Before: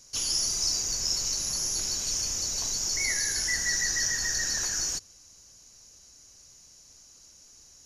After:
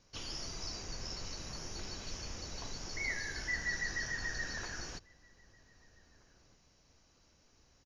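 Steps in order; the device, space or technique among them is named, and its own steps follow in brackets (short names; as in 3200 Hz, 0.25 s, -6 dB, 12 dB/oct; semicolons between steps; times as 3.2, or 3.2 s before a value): shout across a valley (air absorption 280 m; outdoor echo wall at 270 m, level -22 dB); gain -2 dB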